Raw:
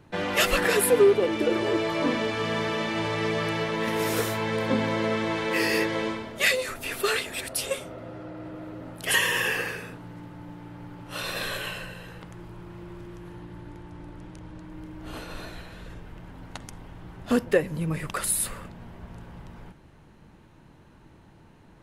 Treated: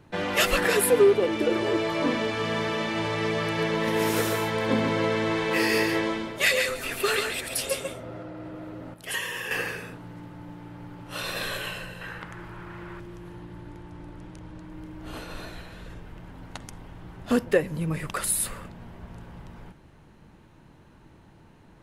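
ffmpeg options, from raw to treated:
-filter_complex "[0:a]asettb=1/sr,asplit=3[s0][s1][s2];[s0]atrim=end=3.444[s3];[s1]atrim=start=3.44:end=8.23,asetpts=PTS-STARTPTS,afade=t=in:d=0.004:c=qsin,afade=t=out:st=4.786:d=0.004:c=qsin,aecho=1:1:139:0.562,atrim=end_sample=211239[s4];[s2]atrim=start=8.226[s5];[s3][s4]acrossfade=d=0.004:c1=hsin:c2=qsin[s6];[s6][s5]acrossfade=d=0.004:c1=qsin:c2=hsin,asettb=1/sr,asplit=3[s7][s8][s9];[s7]atrim=end=12.014[s10];[s8]atrim=start=12.01:end=13,asetpts=PTS-STARTPTS,afade=t=in:d=0.004:c=qsin,afade=t=out:st=0.986:d=0.004:c=qsin,equalizer=f=1600:t=o:w=1.5:g=11.5[s11];[s9]atrim=start=12.996[s12];[s10][s11]acrossfade=d=0.004:c1=hsin:c2=qsin[s13];[s13][s12]acrossfade=d=0.004:c1=qsin:c2=hsin,asplit=3[s14][s15][s16];[s14]atrim=end=8.942[s17];[s15]atrim=start=8.938:end=9.512,asetpts=PTS-STARTPTS,volume=0.398[s18];[s16]atrim=start=9.508[s19];[s17][s18]acrossfade=d=0.004:c1=hsin:c2=hsin[s20];[s20][s19]acrossfade=d=0.004:c1=hsin:c2=hsin"

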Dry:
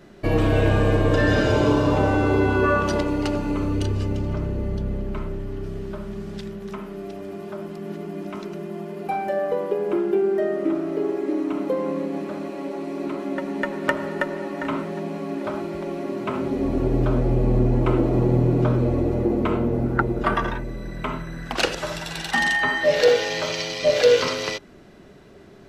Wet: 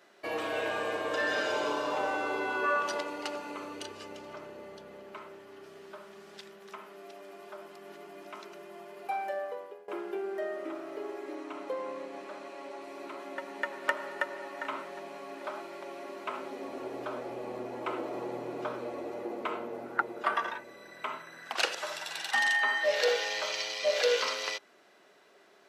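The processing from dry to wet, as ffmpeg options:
-filter_complex "[0:a]asettb=1/sr,asplit=3[s0][s1][s2];[s0]atrim=end=11.354[s3];[s1]atrim=start=11.35:end=12.82,asetpts=PTS-STARTPTS,afade=t=in:d=0.004:c=qsin,afade=t=out:st=1.466:d=0.004:c=qsin,lowpass=10000[s4];[s2]atrim=start=12.816[s5];[s3][s4]acrossfade=d=0.004:c1=hsin:c2=qsin[s6];[s6][s5]acrossfade=d=0.004:c1=qsin:c2=hsin,asplit=2[s7][s8];[s7]atrim=end=9.88,asetpts=PTS-STARTPTS,afade=t=out:st=9.26:d=0.62:silence=0.0944061[s9];[s8]atrim=start=9.88,asetpts=PTS-STARTPTS,afade=t=in:d=0.004:c=hsin:silence=0.0944061[s10];[s9][s10]concat=n=2:v=0:a=1,highpass=660,volume=0.531"

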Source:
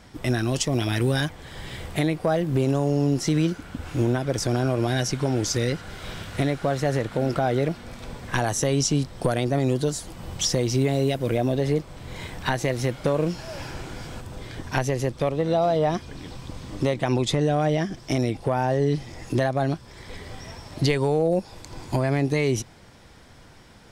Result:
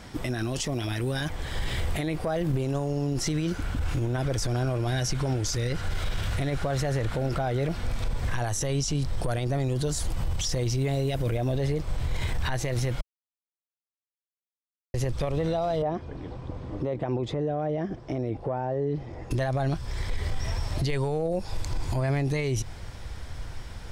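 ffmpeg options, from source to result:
-filter_complex "[0:a]asettb=1/sr,asplit=3[s0][s1][s2];[s0]atrim=end=15.824[s3];[s1]atrim=start=15.82:end=19.31,asetpts=PTS-STARTPTS,afade=t=in:d=0.004:c=qsin,afade=t=out:st=3.486:d=0.004:c=qsin,bandpass=f=400:t=q:w=0.79[s4];[s2]atrim=start=19.306[s5];[s3][s4]acrossfade=d=0.004:c1=hsin:c2=qsin[s6];[s6][s5]acrossfade=d=0.004:c1=qsin:c2=hsin,asplit=3[s7][s8][s9];[s7]atrim=end=13.01,asetpts=PTS-STARTPTS,afade=t=out:st=13.006:d=0.004:c=hsin[s10];[s8]atrim=start=13.01:end=14.94,asetpts=PTS-STARTPTS,volume=0[s11];[s9]atrim=start=14.94,asetpts=PTS-STARTPTS,afade=t=in:d=0.004:c=hsin[s12];[s10][s11][s12]concat=n=3:v=0:a=1,asubboost=boost=6:cutoff=83,acompressor=threshold=0.0631:ratio=6,alimiter=level_in=1.12:limit=0.0631:level=0:latency=1:release=19,volume=0.891,volume=1.78"

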